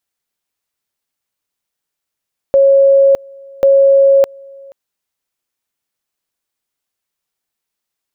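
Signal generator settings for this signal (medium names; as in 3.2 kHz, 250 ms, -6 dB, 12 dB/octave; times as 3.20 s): two-level tone 549 Hz -5 dBFS, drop 27.5 dB, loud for 0.61 s, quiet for 0.48 s, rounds 2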